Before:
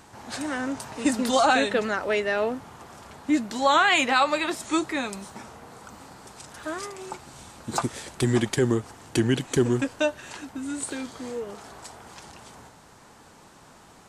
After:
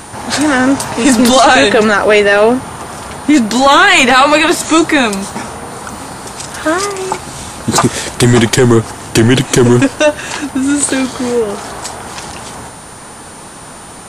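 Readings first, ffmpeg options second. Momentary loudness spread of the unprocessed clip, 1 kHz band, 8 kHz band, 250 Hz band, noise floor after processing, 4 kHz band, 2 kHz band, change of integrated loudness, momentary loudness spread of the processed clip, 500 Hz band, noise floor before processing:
24 LU, +14.0 dB, +18.5 dB, +16.0 dB, -31 dBFS, +16.0 dB, +15.5 dB, +15.0 dB, 19 LU, +15.5 dB, -52 dBFS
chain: -af "apsyclip=11.9,aeval=exprs='val(0)+0.0224*sin(2*PI*9000*n/s)':c=same,volume=0.794"

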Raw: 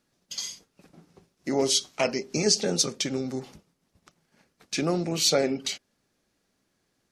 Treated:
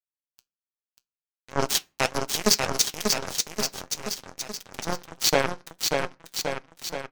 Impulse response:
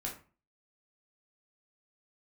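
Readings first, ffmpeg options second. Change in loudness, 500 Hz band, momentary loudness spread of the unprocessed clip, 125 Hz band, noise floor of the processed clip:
0.0 dB, -1.0 dB, 14 LU, -2.0 dB, under -85 dBFS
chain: -filter_complex "[0:a]acrusher=bits=2:mix=0:aa=0.5,flanger=delay=1.8:depth=6.1:regen=70:speed=1.3:shape=sinusoidal,aecho=1:1:590|1121|1599|2029|2416:0.631|0.398|0.251|0.158|0.1,asplit=2[s0][s1];[1:a]atrim=start_sample=2205[s2];[s1][s2]afir=irnorm=-1:irlink=0,volume=0.1[s3];[s0][s3]amix=inputs=2:normalize=0,volume=2.11"

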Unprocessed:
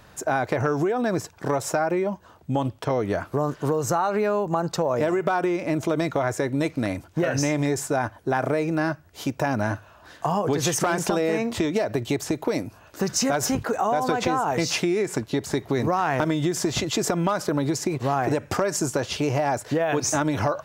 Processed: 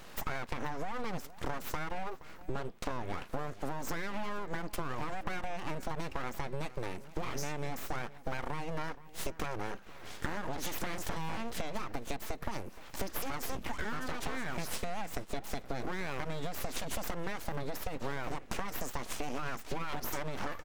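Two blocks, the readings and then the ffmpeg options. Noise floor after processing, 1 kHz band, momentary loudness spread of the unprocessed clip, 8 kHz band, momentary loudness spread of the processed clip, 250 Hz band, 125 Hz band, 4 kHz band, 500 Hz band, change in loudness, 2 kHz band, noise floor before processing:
-49 dBFS, -13.5 dB, 4 LU, -15.5 dB, 3 LU, -17.5 dB, -14.5 dB, -12.0 dB, -17.5 dB, -15.0 dB, -10.5 dB, -52 dBFS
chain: -filter_complex "[0:a]acompressor=threshold=0.0178:ratio=6,aeval=exprs='abs(val(0))':c=same,asplit=2[s0][s1];[s1]adelay=472.3,volume=0.141,highshelf=f=4000:g=-10.6[s2];[s0][s2]amix=inputs=2:normalize=0,volume=1.33"

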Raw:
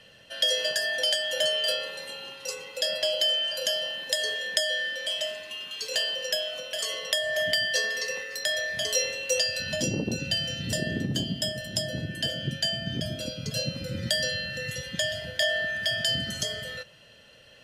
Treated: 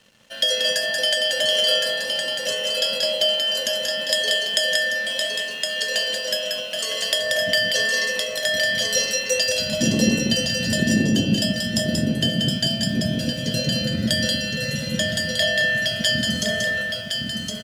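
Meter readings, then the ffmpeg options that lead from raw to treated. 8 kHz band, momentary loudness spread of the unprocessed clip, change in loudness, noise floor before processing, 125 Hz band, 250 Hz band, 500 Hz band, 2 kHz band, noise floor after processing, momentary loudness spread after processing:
+6.5 dB, 9 LU, +6.5 dB, -54 dBFS, +8.0 dB, +13.0 dB, +6.5 dB, +7.0 dB, -30 dBFS, 5 LU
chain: -filter_complex "[0:a]equalizer=f=220:t=o:w=0.48:g=10.5,asplit=2[s0][s1];[s1]aecho=0:1:1064:0.596[s2];[s0][s2]amix=inputs=2:normalize=0,aeval=exprs='sgn(val(0))*max(abs(val(0))-0.00224,0)':c=same,asplit=2[s3][s4];[s4]aecho=0:1:183:0.631[s5];[s3][s5]amix=inputs=2:normalize=0,volume=1.58"

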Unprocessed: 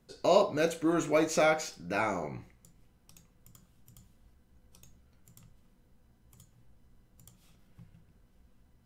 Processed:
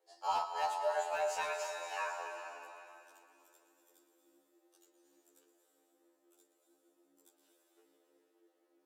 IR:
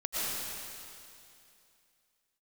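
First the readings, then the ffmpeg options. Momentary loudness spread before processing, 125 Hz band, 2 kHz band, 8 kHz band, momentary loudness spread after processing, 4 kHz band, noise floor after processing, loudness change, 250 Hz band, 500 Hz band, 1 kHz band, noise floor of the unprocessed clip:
11 LU, under -30 dB, -6.0 dB, -7.5 dB, 16 LU, -6.5 dB, -76 dBFS, -8.0 dB, -32.5 dB, -10.5 dB, -2.0 dB, -66 dBFS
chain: -filter_complex "[0:a]equalizer=f=110:w=1.2:g=-10,asplit=2[s0][s1];[1:a]atrim=start_sample=2205,adelay=119[s2];[s1][s2]afir=irnorm=-1:irlink=0,volume=0.282[s3];[s0][s3]amix=inputs=2:normalize=0,afreqshift=280,volume=7.5,asoftclip=hard,volume=0.133,afftfilt=real='re*2*eq(mod(b,4),0)':imag='im*2*eq(mod(b,4),0)':win_size=2048:overlap=0.75,volume=0.447"

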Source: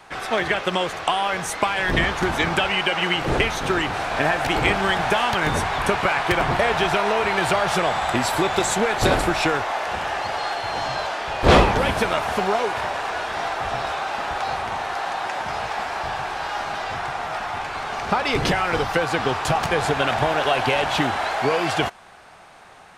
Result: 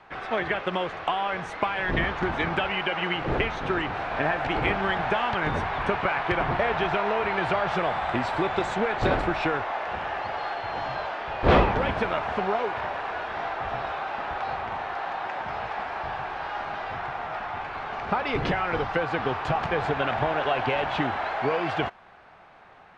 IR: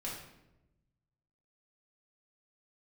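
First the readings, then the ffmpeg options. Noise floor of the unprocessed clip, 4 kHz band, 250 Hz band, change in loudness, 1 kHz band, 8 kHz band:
-45 dBFS, -9.5 dB, -4.5 dB, -5.0 dB, -4.5 dB, under -20 dB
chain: -af "lowpass=2700,volume=0.596"

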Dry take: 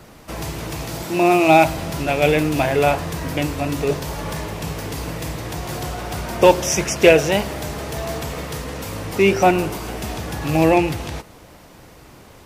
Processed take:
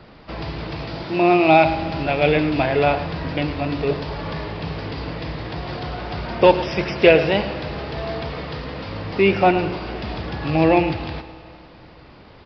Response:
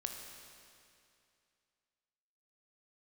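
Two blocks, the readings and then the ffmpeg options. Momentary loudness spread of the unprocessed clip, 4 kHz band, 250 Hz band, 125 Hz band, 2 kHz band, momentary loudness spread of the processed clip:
15 LU, -1.5 dB, -0.5 dB, -1.0 dB, -0.5 dB, 15 LU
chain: -filter_complex "[0:a]asplit=2[s0][s1];[1:a]atrim=start_sample=2205,adelay=108[s2];[s1][s2]afir=irnorm=-1:irlink=0,volume=0.282[s3];[s0][s3]amix=inputs=2:normalize=0,aresample=11025,aresample=44100,volume=0.891"

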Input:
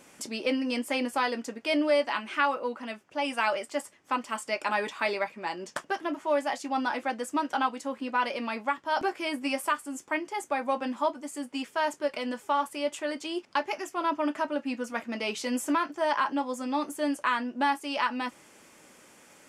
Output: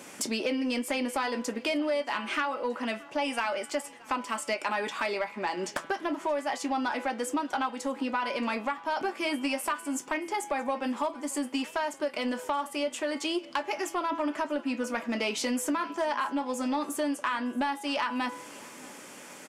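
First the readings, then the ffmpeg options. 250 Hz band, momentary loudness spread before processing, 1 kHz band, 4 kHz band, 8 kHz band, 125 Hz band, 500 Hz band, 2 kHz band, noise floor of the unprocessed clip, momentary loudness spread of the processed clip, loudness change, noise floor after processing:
+0.5 dB, 7 LU, -2.0 dB, +0.5 dB, +4.0 dB, no reading, -1.0 dB, -1.5 dB, -57 dBFS, 4 LU, -1.0 dB, -47 dBFS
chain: -filter_complex "[0:a]bandreject=f=166.1:t=h:w=4,bandreject=f=332.2:t=h:w=4,bandreject=f=498.3:t=h:w=4,bandreject=f=664.4:t=h:w=4,bandreject=f=830.5:t=h:w=4,bandreject=f=996.6:t=h:w=4,bandreject=f=1162.7:t=h:w=4,bandreject=f=1328.8:t=h:w=4,bandreject=f=1494.9:t=h:w=4,bandreject=f=1661:t=h:w=4,bandreject=f=1827.1:t=h:w=4,bandreject=f=1993.2:t=h:w=4,bandreject=f=2159.3:t=h:w=4,bandreject=f=2325.4:t=h:w=4,bandreject=f=2491.5:t=h:w=4,bandreject=f=2657.6:t=h:w=4,bandreject=f=2823.7:t=h:w=4,bandreject=f=2989.8:t=h:w=4,bandreject=f=3155.9:t=h:w=4,bandreject=f=3322:t=h:w=4,bandreject=f=3488.1:t=h:w=4,bandreject=f=3654.2:t=h:w=4,bandreject=f=3820.3:t=h:w=4,bandreject=f=3986.4:t=h:w=4,bandreject=f=4152.5:t=h:w=4,acrossover=split=100[s0][s1];[s0]acrusher=bits=3:dc=4:mix=0:aa=0.000001[s2];[s1]acompressor=threshold=0.0178:ratio=5[s3];[s2][s3]amix=inputs=2:normalize=0,asoftclip=type=tanh:threshold=0.0422,aecho=1:1:626|1252|1878|2504:0.0708|0.0382|0.0206|0.0111,volume=2.66"

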